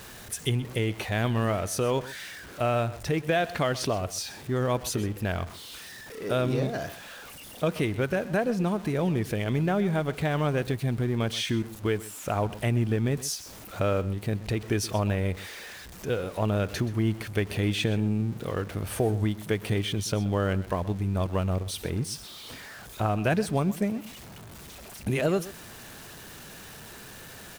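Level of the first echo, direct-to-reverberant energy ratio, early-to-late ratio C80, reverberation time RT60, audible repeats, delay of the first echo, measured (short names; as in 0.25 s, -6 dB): -17.0 dB, none, none, none, 1, 0.127 s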